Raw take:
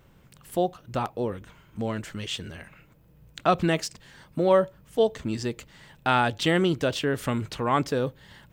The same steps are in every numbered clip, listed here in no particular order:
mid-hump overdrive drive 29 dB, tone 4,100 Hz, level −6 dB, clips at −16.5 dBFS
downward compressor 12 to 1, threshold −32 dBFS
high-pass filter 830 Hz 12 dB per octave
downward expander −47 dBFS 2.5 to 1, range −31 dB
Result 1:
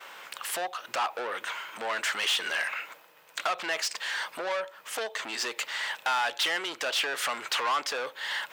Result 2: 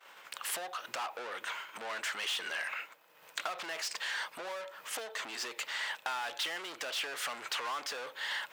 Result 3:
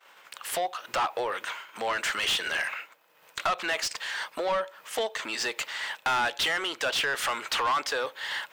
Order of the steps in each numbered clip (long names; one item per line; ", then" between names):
downward compressor, then mid-hump overdrive, then high-pass filter, then downward expander
downward expander, then mid-hump overdrive, then downward compressor, then high-pass filter
downward expander, then downward compressor, then high-pass filter, then mid-hump overdrive